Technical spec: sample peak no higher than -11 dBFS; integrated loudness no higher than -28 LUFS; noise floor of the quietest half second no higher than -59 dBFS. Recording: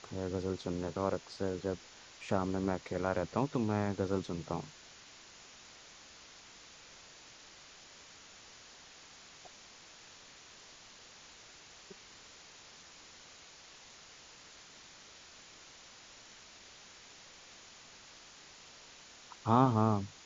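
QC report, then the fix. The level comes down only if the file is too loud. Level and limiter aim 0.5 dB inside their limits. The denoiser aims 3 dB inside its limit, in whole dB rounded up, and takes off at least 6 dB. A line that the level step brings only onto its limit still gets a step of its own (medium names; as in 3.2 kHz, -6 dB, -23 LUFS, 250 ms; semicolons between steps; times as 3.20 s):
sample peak -12.0 dBFS: pass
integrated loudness -34.5 LUFS: pass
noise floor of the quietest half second -56 dBFS: fail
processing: noise reduction 6 dB, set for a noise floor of -56 dBFS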